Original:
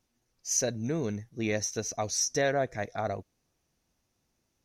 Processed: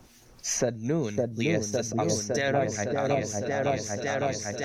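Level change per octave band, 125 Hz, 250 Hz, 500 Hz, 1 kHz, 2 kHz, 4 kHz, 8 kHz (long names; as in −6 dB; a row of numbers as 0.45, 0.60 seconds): +6.0, +6.0, +5.5, +5.0, +4.5, +1.0, −0.5 decibels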